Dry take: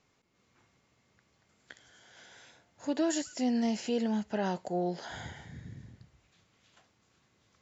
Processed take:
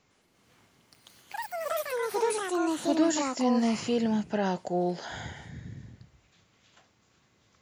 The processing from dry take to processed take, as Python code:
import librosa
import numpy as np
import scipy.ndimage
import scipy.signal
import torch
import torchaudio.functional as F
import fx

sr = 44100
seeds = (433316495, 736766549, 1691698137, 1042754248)

y = fx.echo_pitch(x, sr, ms=108, semitones=6, count=3, db_per_echo=-3.0)
y = F.gain(torch.from_numpy(y), 3.5).numpy()